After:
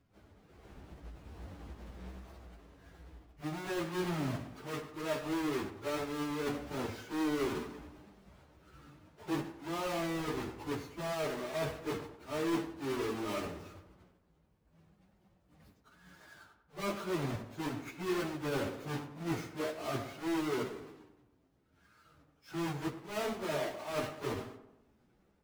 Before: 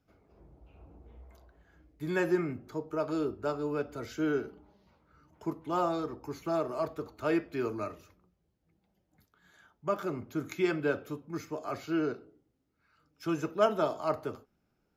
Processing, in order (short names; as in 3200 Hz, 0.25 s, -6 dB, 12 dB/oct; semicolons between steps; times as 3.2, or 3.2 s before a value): half-waves squared off; reverse; compressor 6:1, threshold -36 dBFS, peak gain reduction 17.5 dB; reverse; high shelf 5600 Hz -6.5 dB; plain phase-vocoder stretch 1.7×; AGC gain up to 4 dB; on a send: tape echo 95 ms, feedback 56%, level -8 dB, low-pass 1800 Hz